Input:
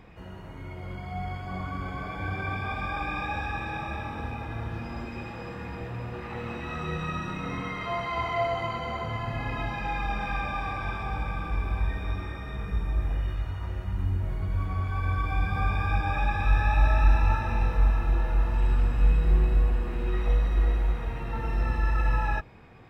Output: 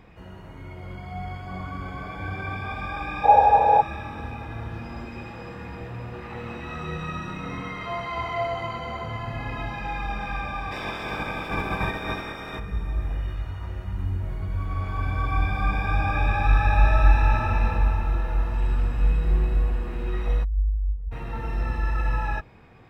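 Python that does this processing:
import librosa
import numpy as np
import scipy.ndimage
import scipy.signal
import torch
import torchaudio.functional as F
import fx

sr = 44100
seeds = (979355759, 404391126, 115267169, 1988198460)

y = fx.spec_box(x, sr, start_s=3.24, length_s=0.57, low_hz=430.0, high_hz=1000.0, gain_db=21)
y = fx.spec_clip(y, sr, under_db=22, at=(10.71, 12.58), fade=0.02)
y = fx.reverb_throw(y, sr, start_s=14.63, length_s=3.01, rt60_s=2.8, drr_db=-1.0)
y = fx.spec_expand(y, sr, power=2.7, at=(20.43, 21.11), fade=0.02)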